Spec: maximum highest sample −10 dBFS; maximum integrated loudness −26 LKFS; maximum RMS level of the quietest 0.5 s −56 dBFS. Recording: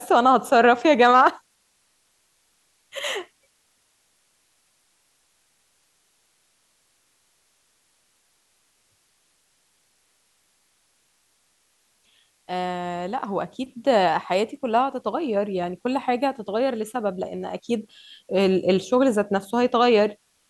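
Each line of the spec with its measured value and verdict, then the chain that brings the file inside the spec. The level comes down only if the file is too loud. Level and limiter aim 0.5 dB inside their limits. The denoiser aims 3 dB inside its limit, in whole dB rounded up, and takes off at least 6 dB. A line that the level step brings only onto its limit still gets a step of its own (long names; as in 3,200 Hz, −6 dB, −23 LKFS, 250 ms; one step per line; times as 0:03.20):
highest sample −5.5 dBFS: out of spec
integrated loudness −22.0 LKFS: out of spec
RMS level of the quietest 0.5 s −66 dBFS: in spec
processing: level −4.5 dB
brickwall limiter −10.5 dBFS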